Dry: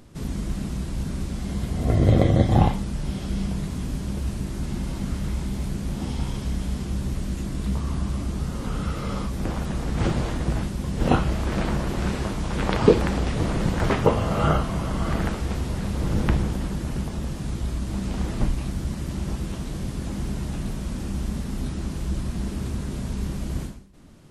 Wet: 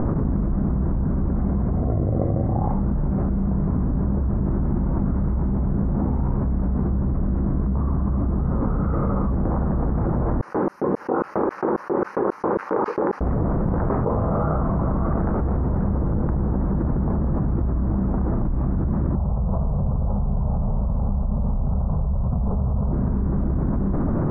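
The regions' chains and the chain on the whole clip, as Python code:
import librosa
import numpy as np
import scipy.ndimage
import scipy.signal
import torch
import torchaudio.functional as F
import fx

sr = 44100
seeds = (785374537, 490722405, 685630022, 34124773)

y = fx.chain(x, sr, fx.high_shelf(hz=4400.0, db=4.0),
    fx.notch(hz=670.0, q=5.3),
    fx.filter_lfo_highpass(shape='square', hz=3.7, low_hz=400.0, high_hz=6000.0, q=2.1), at=(10.41, 13.21))
y = fx.chain(y, sr, fx.lowpass(hz=1300.0, slope=12),
    fx.fixed_phaser(hz=760.0, stages=4),
    fx.room_flutter(wall_m=9.3, rt60_s=0.36), at=(19.15, 22.93))
y = scipy.signal.sosfilt(scipy.signal.cheby2(4, 50, 3200.0, 'lowpass', fs=sr, output='sos'), y)
y = fx.env_flatten(y, sr, amount_pct=100)
y = y * 10.0 ** (-7.5 / 20.0)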